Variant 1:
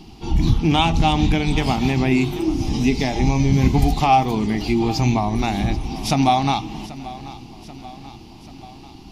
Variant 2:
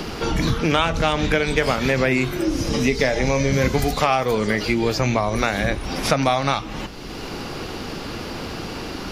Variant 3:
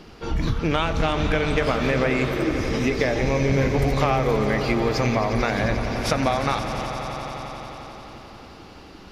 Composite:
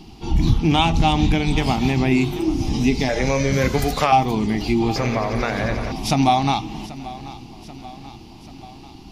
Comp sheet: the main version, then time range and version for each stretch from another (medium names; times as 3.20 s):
1
3.09–4.12 s: from 2
4.96–5.92 s: from 3